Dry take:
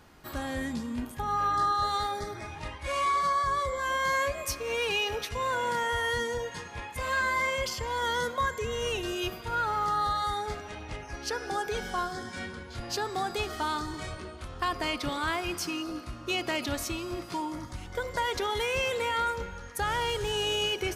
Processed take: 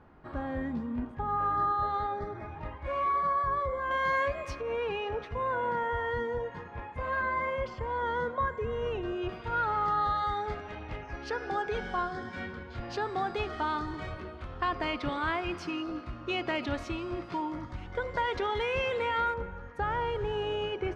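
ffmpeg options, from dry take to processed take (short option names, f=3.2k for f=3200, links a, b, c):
-af "asetnsamples=n=441:p=0,asendcmd='3.91 lowpass f 2400;4.61 lowpass f 1400;9.29 lowpass f 2600;19.34 lowpass f 1500',lowpass=1.4k"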